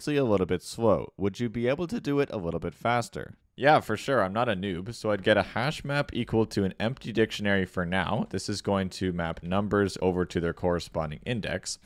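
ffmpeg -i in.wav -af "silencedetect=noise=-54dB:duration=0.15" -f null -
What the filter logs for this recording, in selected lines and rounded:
silence_start: 3.35
silence_end: 3.58 | silence_duration: 0.23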